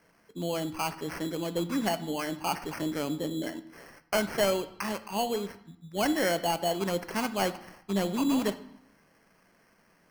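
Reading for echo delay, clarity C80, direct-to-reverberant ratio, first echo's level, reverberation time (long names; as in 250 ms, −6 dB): no echo audible, 17.0 dB, 10.5 dB, no echo audible, 0.80 s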